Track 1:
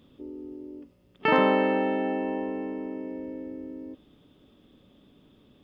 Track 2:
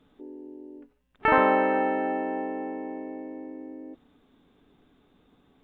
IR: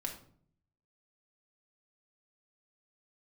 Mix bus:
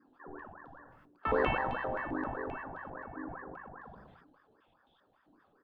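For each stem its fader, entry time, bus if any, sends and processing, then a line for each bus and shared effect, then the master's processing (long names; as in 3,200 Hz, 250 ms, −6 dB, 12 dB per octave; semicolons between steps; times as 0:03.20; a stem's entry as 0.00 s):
−4.5 dB, 0.00 s, send −14 dB, band-pass on a step sequencer 7.6 Hz 310–3,600 Hz
−9.5 dB, 1.4 ms, polarity flipped, send −4 dB, elliptic band-stop filter 450–3,200 Hz; high shelf with overshoot 2,100 Hz −7.5 dB, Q 1.5; ring modulator whose carrier an LFO sweeps 910 Hz, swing 60%, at 5 Hz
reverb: on, RT60 0.55 s, pre-delay 4 ms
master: level that may fall only so fast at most 35 dB per second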